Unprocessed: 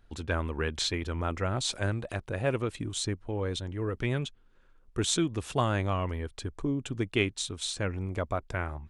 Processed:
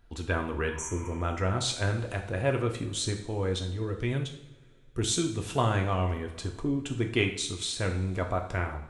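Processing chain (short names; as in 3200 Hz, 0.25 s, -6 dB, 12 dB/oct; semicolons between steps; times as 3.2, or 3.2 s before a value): 0.74–1.14 spectral repair 900–5600 Hz after; 3.64–5.39 bell 1200 Hz -5 dB 2.9 oct; on a send: reverb, pre-delay 3 ms, DRR 3 dB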